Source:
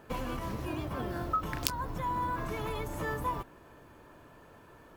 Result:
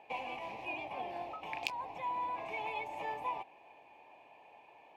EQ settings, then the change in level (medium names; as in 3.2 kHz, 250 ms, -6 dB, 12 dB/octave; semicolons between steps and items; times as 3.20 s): two resonant band-passes 1.4 kHz, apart 1.6 oct; +9.0 dB